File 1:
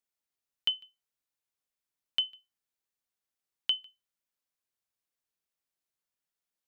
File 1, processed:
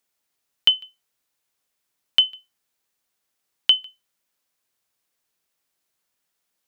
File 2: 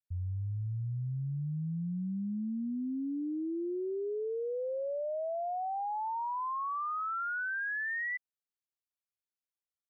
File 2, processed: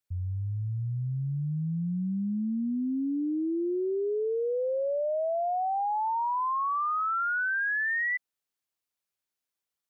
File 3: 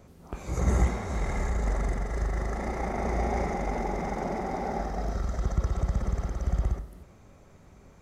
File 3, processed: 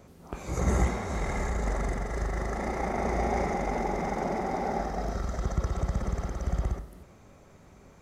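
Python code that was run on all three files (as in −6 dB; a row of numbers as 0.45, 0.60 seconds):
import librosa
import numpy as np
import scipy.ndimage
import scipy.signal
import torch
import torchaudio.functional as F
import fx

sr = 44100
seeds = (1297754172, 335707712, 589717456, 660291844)

y = fx.low_shelf(x, sr, hz=110.0, db=-5.5)
y = y * 10.0 ** (-30 / 20.0) / np.sqrt(np.mean(np.square(y)))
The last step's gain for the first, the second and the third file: +12.5, +6.5, +2.0 decibels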